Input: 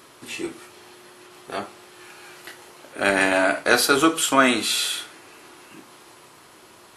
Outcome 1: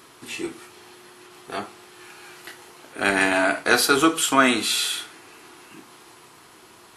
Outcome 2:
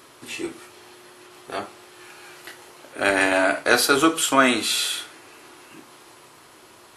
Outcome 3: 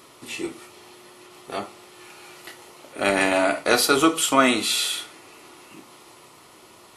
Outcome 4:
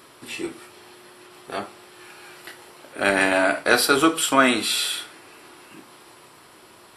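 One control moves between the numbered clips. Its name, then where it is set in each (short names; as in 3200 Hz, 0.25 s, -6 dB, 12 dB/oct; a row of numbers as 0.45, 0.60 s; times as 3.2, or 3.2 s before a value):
notch, frequency: 570, 190, 1600, 6500 Hz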